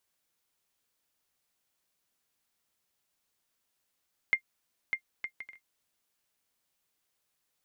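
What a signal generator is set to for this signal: bouncing ball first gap 0.60 s, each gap 0.52, 2110 Hz, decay 84 ms -14.5 dBFS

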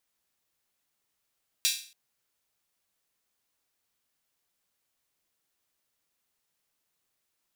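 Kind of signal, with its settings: open hi-hat length 0.28 s, high-pass 3300 Hz, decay 0.43 s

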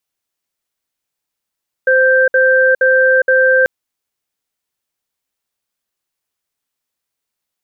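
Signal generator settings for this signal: cadence 519 Hz, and 1570 Hz, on 0.41 s, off 0.06 s, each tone -10.5 dBFS 1.79 s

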